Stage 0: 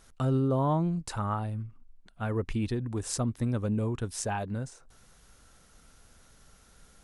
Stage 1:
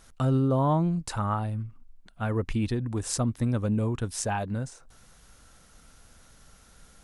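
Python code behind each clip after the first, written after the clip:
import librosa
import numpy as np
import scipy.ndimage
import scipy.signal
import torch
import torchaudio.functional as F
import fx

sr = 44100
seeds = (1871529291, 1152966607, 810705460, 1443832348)

y = fx.peak_eq(x, sr, hz=400.0, db=-3.0, octaves=0.34)
y = y * 10.0 ** (3.0 / 20.0)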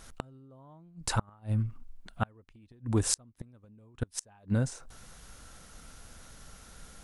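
y = fx.gate_flip(x, sr, shuts_db=-20.0, range_db=-34)
y = y * 10.0 ** (4.0 / 20.0)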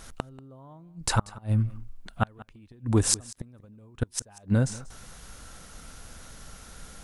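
y = x + 10.0 ** (-20.0 / 20.0) * np.pad(x, (int(187 * sr / 1000.0), 0))[:len(x)]
y = y * 10.0 ** (5.0 / 20.0)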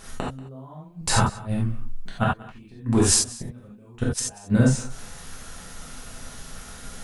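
y = fx.rev_gated(x, sr, seeds[0], gate_ms=110, shape='flat', drr_db=-5.5)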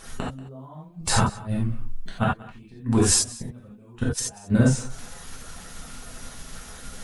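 y = fx.spec_quant(x, sr, step_db=15)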